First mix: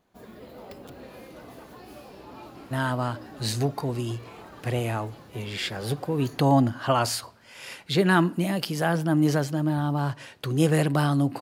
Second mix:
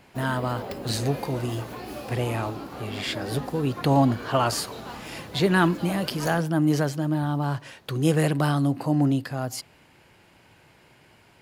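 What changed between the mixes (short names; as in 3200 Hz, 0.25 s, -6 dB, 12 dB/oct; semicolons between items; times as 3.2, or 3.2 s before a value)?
speech: entry -2.55 s; background +8.5 dB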